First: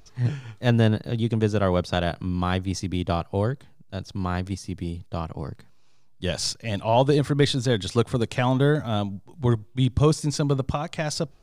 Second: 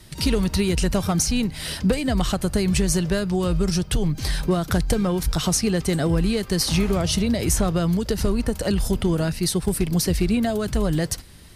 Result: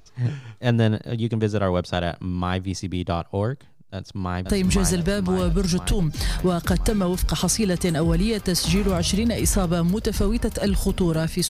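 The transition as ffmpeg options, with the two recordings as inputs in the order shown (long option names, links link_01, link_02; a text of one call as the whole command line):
ffmpeg -i cue0.wav -i cue1.wav -filter_complex "[0:a]apad=whole_dur=11.49,atrim=end=11.49,atrim=end=4.472[link_01];[1:a]atrim=start=2.508:end=9.53[link_02];[link_01][link_02]acrossfade=duration=0.004:curve1=hsin:curve2=hsin,asplit=2[link_03][link_04];[link_04]afade=type=in:start_time=3.94:duration=0.01,afade=type=out:start_time=4.47:duration=0.01,aecho=0:1:510|1020|1530|2040|2550|3060|3570|4080|4590|5100|5610|6120:0.707946|0.495562|0.346893|0.242825|0.169978|0.118984|0.0832891|0.0583024|0.0408117|0.0285682|0.0199977|0.0139984[link_05];[link_03][link_05]amix=inputs=2:normalize=0" out.wav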